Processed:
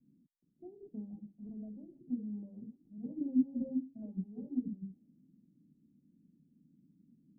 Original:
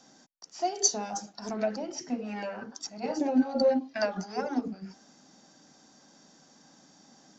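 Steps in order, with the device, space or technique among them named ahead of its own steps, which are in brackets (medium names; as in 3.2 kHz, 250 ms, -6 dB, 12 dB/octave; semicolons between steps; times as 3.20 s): the neighbour's flat through the wall (low-pass 280 Hz 24 dB/octave; peaking EQ 160 Hz +3 dB); level-controlled noise filter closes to 340 Hz, open at -32 dBFS; 1.46–2.10 s: dynamic bell 250 Hz, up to -6 dB, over -48 dBFS, Q 0.89; trim -3.5 dB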